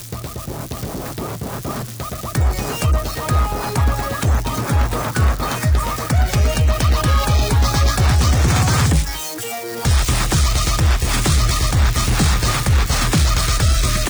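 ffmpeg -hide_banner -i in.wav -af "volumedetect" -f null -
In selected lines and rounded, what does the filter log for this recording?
mean_volume: -16.6 dB
max_volume: -6.6 dB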